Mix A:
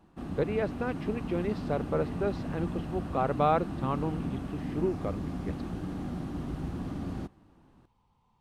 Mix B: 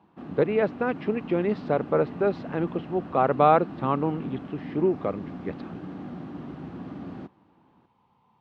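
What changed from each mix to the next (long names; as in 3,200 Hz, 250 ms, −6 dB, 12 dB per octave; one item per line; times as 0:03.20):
speech +7.0 dB
master: add band-pass filter 160–3,100 Hz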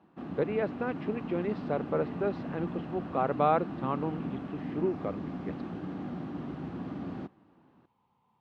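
speech −7.0 dB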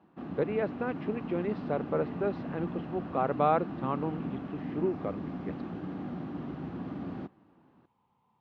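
master: add high-frequency loss of the air 68 metres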